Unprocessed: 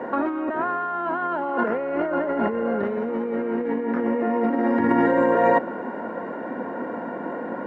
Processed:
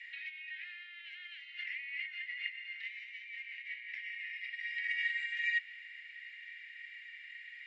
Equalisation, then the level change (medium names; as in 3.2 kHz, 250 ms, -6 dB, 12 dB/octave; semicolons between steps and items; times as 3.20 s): steep high-pass 2 kHz 96 dB/octave; low-pass 3.4 kHz 6 dB/octave; distance through air 77 m; +9.5 dB